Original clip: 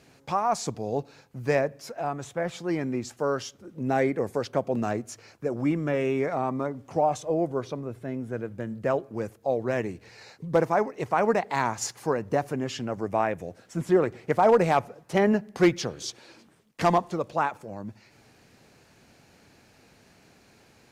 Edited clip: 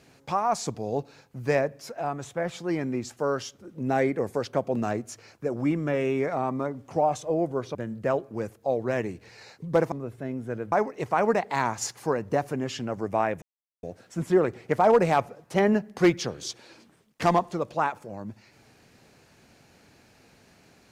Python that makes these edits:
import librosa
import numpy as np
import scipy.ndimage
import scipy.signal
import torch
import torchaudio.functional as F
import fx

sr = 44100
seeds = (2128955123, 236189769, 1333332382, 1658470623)

y = fx.edit(x, sr, fx.move(start_s=7.75, length_s=0.8, to_s=10.72),
    fx.insert_silence(at_s=13.42, length_s=0.41), tone=tone)